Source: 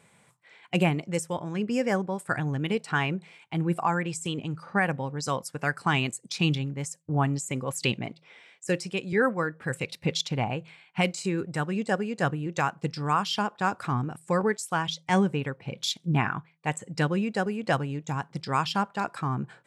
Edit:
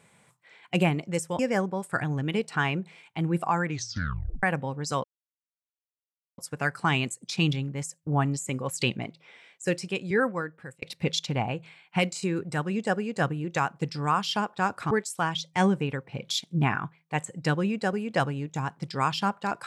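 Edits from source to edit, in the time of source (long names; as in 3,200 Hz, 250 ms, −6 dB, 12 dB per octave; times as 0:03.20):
0:01.39–0:01.75: remove
0:04.00: tape stop 0.79 s
0:05.40: splice in silence 1.34 s
0:08.97–0:09.84: fade out equal-power
0:13.93–0:14.44: remove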